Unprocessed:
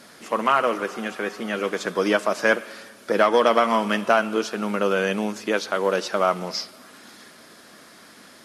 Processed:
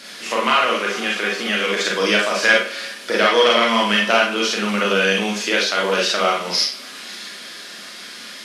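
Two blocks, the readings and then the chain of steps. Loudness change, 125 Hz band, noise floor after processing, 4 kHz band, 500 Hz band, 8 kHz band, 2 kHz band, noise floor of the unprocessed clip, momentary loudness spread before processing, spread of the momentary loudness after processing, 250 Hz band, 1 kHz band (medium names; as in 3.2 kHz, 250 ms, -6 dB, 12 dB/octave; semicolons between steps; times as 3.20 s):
+5.0 dB, no reading, -36 dBFS, +13.5 dB, +2.0 dB, +10.0 dB, +8.5 dB, -48 dBFS, 11 LU, 17 LU, +2.0 dB, +2.5 dB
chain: tracing distortion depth 0.021 ms; frequency weighting D; resampled via 32 kHz; in parallel at +2 dB: compression, threshold -25 dBFS, peak gain reduction 15 dB; on the sum: Schroeder reverb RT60 0.33 s, combs from 31 ms, DRR -2.5 dB; trim -5.5 dB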